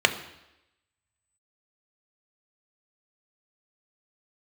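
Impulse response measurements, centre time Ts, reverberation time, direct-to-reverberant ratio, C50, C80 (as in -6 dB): 11 ms, 0.90 s, 6.5 dB, 12.5 dB, 14.5 dB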